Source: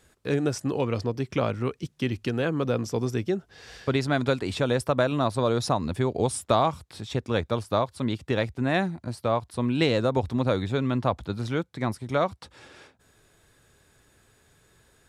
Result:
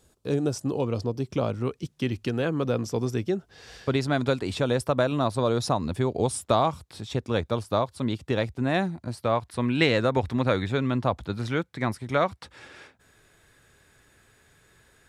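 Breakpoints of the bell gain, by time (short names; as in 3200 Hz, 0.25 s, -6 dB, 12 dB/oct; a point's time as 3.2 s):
bell 1900 Hz 1.1 oct
1.4 s -10.5 dB
1.88 s -2 dB
8.97 s -2 dB
9.57 s +7 dB
10.6 s +7 dB
11.09 s -1.5 dB
11.4 s +5 dB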